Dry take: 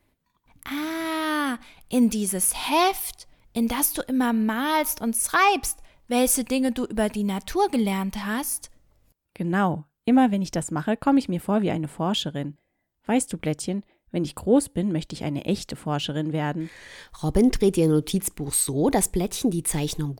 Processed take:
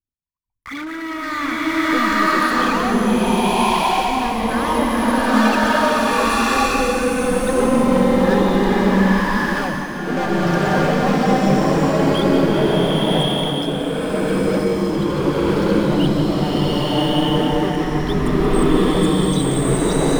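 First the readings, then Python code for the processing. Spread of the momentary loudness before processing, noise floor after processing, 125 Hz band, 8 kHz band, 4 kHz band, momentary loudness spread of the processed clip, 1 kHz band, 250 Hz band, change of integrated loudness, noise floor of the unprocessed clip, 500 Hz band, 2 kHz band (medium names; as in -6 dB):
10 LU, -28 dBFS, +8.5 dB, -3.5 dB, +8.5 dB, 6 LU, +8.5 dB, +6.5 dB, +6.5 dB, -73 dBFS, +9.0 dB, +10.0 dB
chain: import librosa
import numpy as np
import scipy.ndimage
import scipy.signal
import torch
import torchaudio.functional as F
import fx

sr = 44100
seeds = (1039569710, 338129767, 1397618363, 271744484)

y = fx.envelope_sharpen(x, sr, power=3.0)
y = scipy.signal.sosfilt(scipy.signal.butter(2, 3700.0, 'lowpass', fs=sr, output='sos'), y)
y = fx.notch(y, sr, hz=700.0, q=16.0)
y = fx.leveller(y, sr, passes=5)
y = y + 10.0 ** (-11.0 / 20.0) * np.pad(y, (int(179 * sr / 1000.0), 0))[:len(y)]
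y = fx.buffer_glitch(y, sr, at_s=(6.66,), block=2048, repeats=13)
y = fx.rev_bloom(y, sr, seeds[0], attack_ms=1200, drr_db=-11.5)
y = y * 10.0 ** (-15.5 / 20.0)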